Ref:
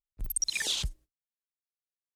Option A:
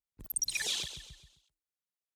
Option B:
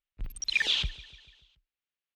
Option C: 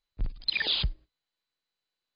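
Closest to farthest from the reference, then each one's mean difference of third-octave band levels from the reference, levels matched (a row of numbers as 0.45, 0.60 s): A, B, C; 4.0, 6.0, 9.0 dB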